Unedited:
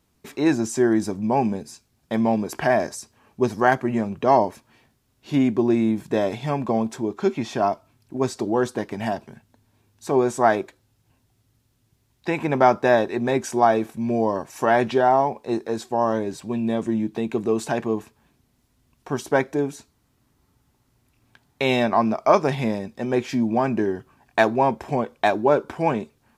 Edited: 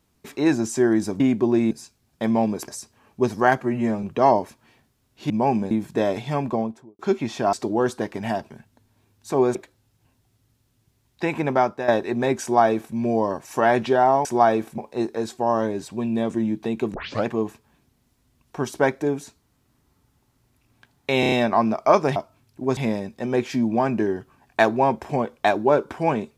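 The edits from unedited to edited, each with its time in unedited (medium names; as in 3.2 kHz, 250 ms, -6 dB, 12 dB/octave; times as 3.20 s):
1.20–1.61 s: swap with 5.36–5.87 s
2.58–2.88 s: delete
3.81–4.09 s: stretch 1.5×
6.58–7.15 s: studio fade out
7.69–8.30 s: move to 22.56 s
10.32–10.60 s: delete
12.43–12.93 s: fade out, to -12 dB
13.47–14.00 s: copy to 15.30 s
17.46 s: tape start 0.31 s
21.72 s: stutter 0.03 s, 5 plays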